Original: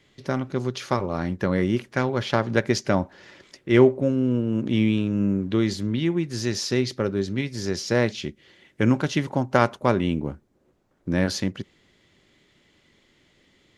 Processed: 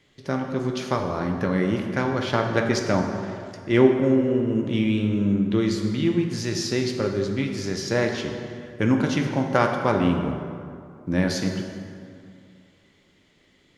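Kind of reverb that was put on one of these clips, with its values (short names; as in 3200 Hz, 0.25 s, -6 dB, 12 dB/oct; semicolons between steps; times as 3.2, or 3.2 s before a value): plate-style reverb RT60 2.4 s, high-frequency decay 0.55×, DRR 2.5 dB; gain -1.5 dB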